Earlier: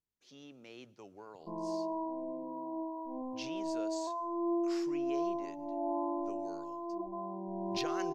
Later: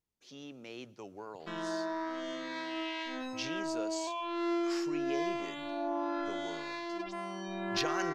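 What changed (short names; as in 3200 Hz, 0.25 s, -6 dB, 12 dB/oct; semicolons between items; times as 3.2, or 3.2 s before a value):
speech +5.5 dB; background: remove brick-wall FIR band-stop 1100–13000 Hz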